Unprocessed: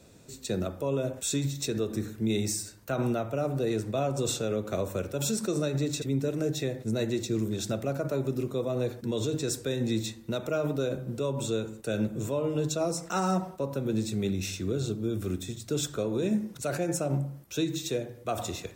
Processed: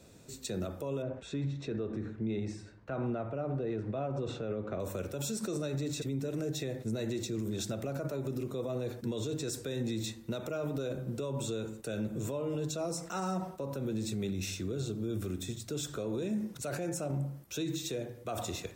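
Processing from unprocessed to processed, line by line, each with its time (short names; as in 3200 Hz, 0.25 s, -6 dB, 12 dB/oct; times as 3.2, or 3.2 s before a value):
1.02–4.8 LPF 2100 Hz
whole clip: limiter -25.5 dBFS; gain -1.5 dB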